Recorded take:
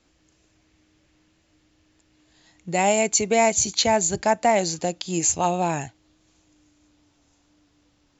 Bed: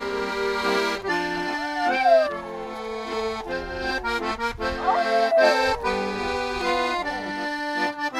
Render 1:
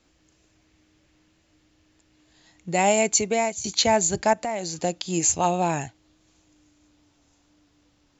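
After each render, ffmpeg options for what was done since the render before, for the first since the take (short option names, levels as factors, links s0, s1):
-filter_complex "[0:a]asettb=1/sr,asplit=3[s0][s1][s2];[s0]atrim=end=4.334[s3];[s1]atrim=start=4.33:end=4.8,asetpts=PTS-STARTPTS,afade=t=in:d=0.004:c=qsin,afade=t=out:st=0.466:d=0.004:c=qsin,acompressor=threshold=0.0398:ratio=3:attack=3.2:release=140:knee=1:detection=peak[s4];[s2]atrim=start=4.796[s5];[s3][s4]acrossfade=d=0.004:c1=hsin:c2=qsin[s6];[s6][s5]acrossfade=d=0.004:c1=qsin:c2=hsin,asplit=2[s7][s8];[s7]atrim=end=3.64,asetpts=PTS-STARTPTS,afade=t=out:st=3.15:d=0.49:silence=0.16788[s9];[s8]atrim=start=3.64,asetpts=PTS-STARTPTS,afade=t=in:d=0.004:c=hsin:silence=0.16788[s10];[s9][s10]concat=n=2:v=0:a=1"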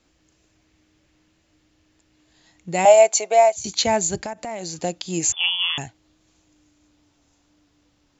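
-filter_complex "[0:a]asettb=1/sr,asplit=3[s0][s1][s2];[s0]atrim=end=2.854[s3];[s1]atrim=start=2.85:end=3.56,asetpts=PTS-STARTPTS,afade=t=in:d=0.004:c=qsin,afade=t=out:st=0.706:d=0.004:c=qsin,highpass=f=650:t=q:w=3.9[s4];[s2]atrim=start=3.556[s5];[s3][s4]acrossfade=d=0.004:c1=hsin:c2=qsin[s6];[s6][s5]acrossfade=d=0.004:c1=qsin:c2=hsin,asettb=1/sr,asplit=3[s7][s8][s9];[s7]atrim=end=4.204[s10];[s8]atrim=start=4.2:end=4.62,asetpts=PTS-STARTPTS,afade=t=in:d=0.004:c=qsin,afade=t=out:st=0.416:d=0.004:c=qsin,acompressor=threshold=0.0501:ratio=8:attack=3.2:release=140:knee=1:detection=peak[s11];[s9]atrim=start=4.616[s12];[s10][s11]acrossfade=d=0.004:c1=hsin:c2=qsin[s13];[s13][s12]acrossfade=d=0.004:c1=qsin:c2=hsin,asettb=1/sr,asplit=3[s14][s15][s16];[s14]atrim=end=5.324[s17];[s15]atrim=start=5.32:end=5.78,asetpts=PTS-STARTPTS,afade=t=in:d=0.004:c=qsin,afade=t=out:st=0.456:d=0.004:c=qsin,lowpass=f=3100:t=q:w=0.5098,lowpass=f=3100:t=q:w=0.6013,lowpass=f=3100:t=q:w=0.9,lowpass=f=3100:t=q:w=2.563,afreqshift=-3600[s18];[s16]atrim=start=5.776[s19];[s17][s18]acrossfade=d=0.004:c1=hsin:c2=qsin[s20];[s20][s19]acrossfade=d=0.004:c1=qsin:c2=hsin"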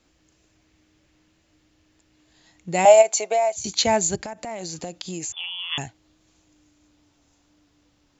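-filter_complex "[0:a]asplit=3[s0][s1][s2];[s0]afade=t=out:st=3.01:d=0.02[s3];[s1]acompressor=threshold=0.141:ratio=6:attack=3.2:release=140:knee=1:detection=peak,afade=t=in:st=3.01:d=0.02,afade=t=out:st=3.59:d=0.02[s4];[s2]afade=t=in:st=3.59:d=0.02[s5];[s3][s4][s5]amix=inputs=3:normalize=0,asplit=3[s6][s7][s8];[s6]afade=t=out:st=4.15:d=0.02[s9];[s7]acompressor=threshold=0.0398:ratio=6:attack=3.2:release=140:knee=1:detection=peak,afade=t=in:st=4.15:d=0.02,afade=t=out:st=5.71:d=0.02[s10];[s8]afade=t=in:st=5.71:d=0.02[s11];[s9][s10][s11]amix=inputs=3:normalize=0"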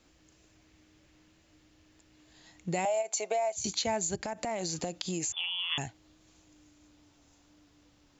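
-af "alimiter=limit=0.2:level=0:latency=1:release=192,acompressor=threshold=0.0316:ratio=3"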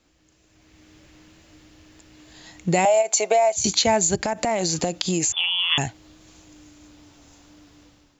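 -af "dynaudnorm=f=460:g=3:m=3.98"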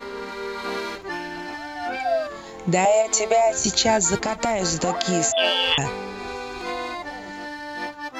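-filter_complex "[1:a]volume=0.501[s0];[0:a][s0]amix=inputs=2:normalize=0"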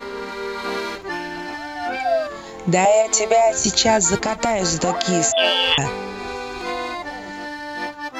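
-af "volume=1.41,alimiter=limit=0.891:level=0:latency=1"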